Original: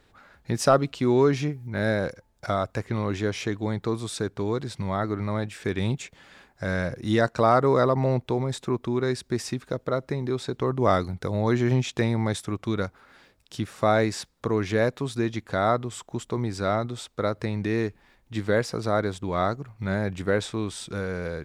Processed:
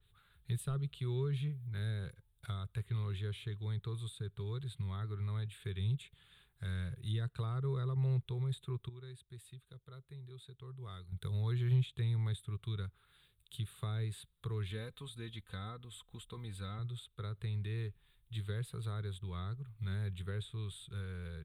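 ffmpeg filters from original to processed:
-filter_complex "[0:a]asettb=1/sr,asplit=3[s0][s1][s2];[s0]atrim=end=14.704[s3];[s1]atrim=start=14.7:end=16.79,asetpts=PTS-STARTPTS,afade=t=in:d=0.004:c=qsin,afade=t=out:st=2.086:d=0.004:c=qsin,aecho=1:1:3.9:0.78,atrim=end_sample=92169[s4];[s2]atrim=start=16.786[s5];[s3][s4]acrossfade=d=0.004:c1=hsin:c2=qsin[s6];[s6][s5]acrossfade=d=0.004:c1=qsin:c2=hsin,asplit=3[s7][s8][s9];[s7]atrim=end=8.892[s10];[s8]atrim=start=8.888:end=11.122,asetpts=PTS-STARTPTS,volume=0.266[s11];[s9]atrim=start=11.118[s12];[s10][s11]acrossfade=d=0.004:c1=hsin:c2=hsin[s13];[s13][s12]acrossfade=d=0.004:c1=hsin:c2=hsin,firequalizer=gain_entry='entry(140,0);entry(260,-28);entry(400,-11);entry(570,-25);entry(1200,-11);entry(2000,-12);entry(3600,3);entry(5400,-28);entry(8800,3)':delay=0.05:min_phase=1,acrossover=split=390[s14][s15];[s15]acompressor=threshold=0.01:ratio=10[s16];[s14][s16]amix=inputs=2:normalize=0,adynamicequalizer=threshold=0.00112:dfrequency=3500:dqfactor=0.7:tfrequency=3500:tqfactor=0.7:attack=5:release=100:ratio=0.375:range=2.5:mode=cutabove:tftype=highshelf,volume=0.531"

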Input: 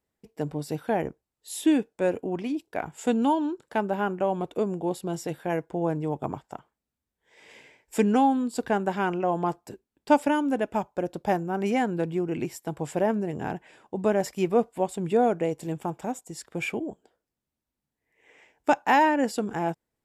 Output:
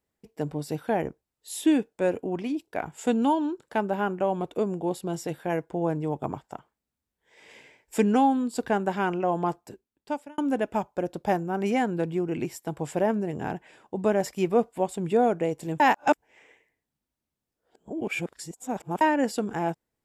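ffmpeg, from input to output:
-filter_complex "[0:a]asplit=4[s0][s1][s2][s3];[s0]atrim=end=10.38,asetpts=PTS-STARTPTS,afade=t=out:st=9.49:d=0.89[s4];[s1]atrim=start=10.38:end=15.802,asetpts=PTS-STARTPTS,afade=t=in:d=0.004:c=hsin[s5];[s2]atrim=start=15.798:end=19.012,asetpts=PTS-STARTPTS,areverse[s6];[s3]atrim=start=19.008[s7];[s4][s5]concat=n=2:v=0:a=1[s8];[s8][s6]acrossfade=d=0.004:c1=hsin:c2=hsin[s9];[s9][s7]acrossfade=d=0.004:c1=hsin:c2=hsin"

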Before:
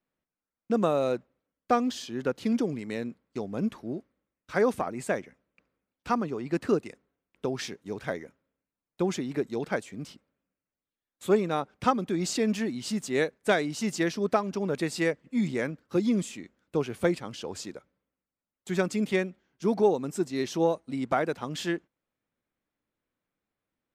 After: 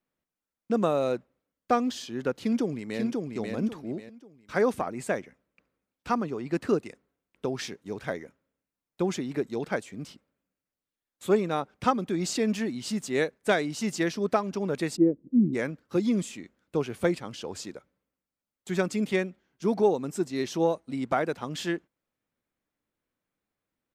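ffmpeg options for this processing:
-filter_complex "[0:a]asplit=2[s0][s1];[s1]afade=t=in:st=2.39:d=0.01,afade=t=out:st=3.01:d=0.01,aecho=0:1:540|1080|1620|2160:0.707946|0.212384|0.0637151|0.0191145[s2];[s0][s2]amix=inputs=2:normalize=0,asplit=3[s3][s4][s5];[s3]afade=t=out:st=14.95:d=0.02[s6];[s4]lowpass=f=320:t=q:w=3.1,afade=t=in:st=14.95:d=0.02,afade=t=out:st=15.53:d=0.02[s7];[s5]afade=t=in:st=15.53:d=0.02[s8];[s6][s7][s8]amix=inputs=3:normalize=0"

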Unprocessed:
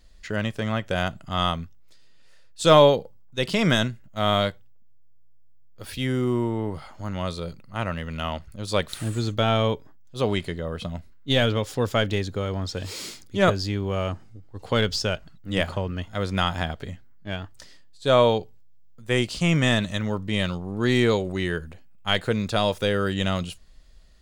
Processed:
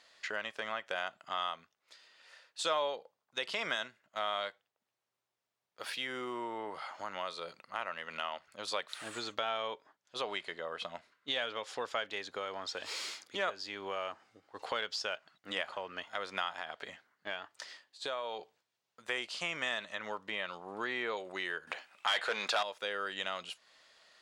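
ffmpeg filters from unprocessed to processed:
-filter_complex "[0:a]asettb=1/sr,asplit=3[s0][s1][s2];[s0]atrim=end=9.644[s3];[s1]atrim=start=9.64:end=12.05,asetpts=PTS-STARTPTS,afade=t=in:d=0.004:c=qsin,afade=t=out:st=2.406:d=0.004:c=qsin,lowpass=11000[s4];[s2]atrim=start=12.046[s5];[s3][s4]acrossfade=d=0.004:c1=hsin:c2=qsin[s6];[s6][s5]acrossfade=d=0.004:c1=qsin:c2=hsin,asettb=1/sr,asplit=3[s7][s8][s9];[s7]atrim=end=16.594[s10];[s8]atrim=start=16.59:end=18.39,asetpts=PTS-STARTPTS,afade=t=in:d=0.004:c=qsin,afade=t=out:st=1.796:d=0.004:c=qsin,acompressor=threshold=0.0562:ratio=6:attack=3.2:release=140:knee=1:detection=peak[s11];[s9]atrim=start=18.386[s12];[s10][s11]acrossfade=d=0.004:c1=hsin:c2=qsin[s13];[s13][s12]acrossfade=d=0.004:c1=qsin:c2=hsin,asettb=1/sr,asplit=3[s14][s15][s16];[s14]atrim=end=19.824[s17];[s15]atrim=start=19.82:end=21.17,asetpts=PTS-STARTPTS,afade=t=in:d=0.004:c=qsin,afade=t=out:st=1.346:d=0.004:c=qsin,acrossover=split=3000[s18][s19];[s19]acompressor=threshold=0.00631:ratio=4:attack=1:release=60[s20];[s18][s20]amix=inputs=2:normalize=0[s21];[s16]atrim=start=21.166[s22];[s17][s21]acrossfade=d=0.004:c1=hsin:c2=qsin[s23];[s23][s22]acrossfade=d=0.004:c1=qsin:c2=hsin,asettb=1/sr,asplit=3[s24][s25][s26];[s24]atrim=end=21.674[s27];[s25]atrim=start=21.67:end=22.63,asetpts=PTS-STARTPTS,afade=t=in:d=0.004:c=qsin,afade=t=out:st=0.956:d=0.004:c=qsin,asplit=2[s28][s29];[s29]highpass=f=720:p=1,volume=17.8,asoftclip=type=tanh:threshold=0.562[s30];[s28][s30]amix=inputs=2:normalize=0,lowpass=f=6400:p=1,volume=0.501[s31];[s26]atrim=start=22.626[s32];[s27][s31]acrossfade=d=0.004:c1=hsin:c2=qsin[s33];[s33][s32]acrossfade=d=0.004:c1=qsin:c2=hsin,highpass=810,aemphasis=mode=reproduction:type=50fm,acompressor=threshold=0.00447:ratio=2.5,volume=2.24"

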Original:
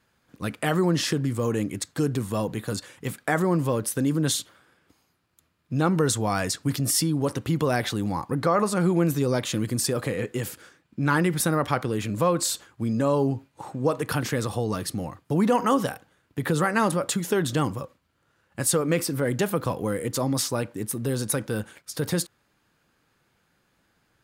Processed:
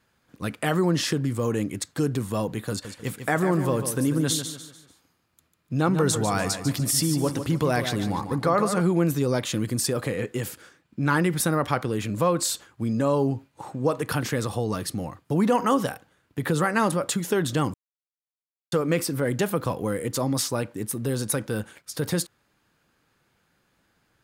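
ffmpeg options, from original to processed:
-filter_complex "[0:a]asettb=1/sr,asplit=3[s0][s1][s2];[s0]atrim=end=2.704[s3];[s1]atrim=start=2.7:end=8.81,asetpts=PTS-STARTPTS,afade=t=in:d=0.004:c=qsin,afade=t=out:st=6.106:d=0.004:c=qsin,aecho=1:1:147|294|441|588:0.355|0.135|0.0512|0.0195,atrim=end_sample=269451[s4];[s2]atrim=start=8.806[s5];[s3][s4]acrossfade=d=0.004:c1=hsin:c2=qsin[s6];[s6][s5]acrossfade=d=0.004:c1=qsin:c2=hsin,asplit=3[s7][s8][s9];[s7]atrim=end=17.74,asetpts=PTS-STARTPTS,afade=t=out:st=17.736:d=0.004:c=hsin[s10];[s8]atrim=start=17.74:end=18.72,asetpts=PTS-STARTPTS,volume=0[s11];[s9]atrim=start=18.72,asetpts=PTS-STARTPTS,afade=t=in:d=0.004:c=hsin[s12];[s10][s11][s12]concat=n=3:v=0:a=1"

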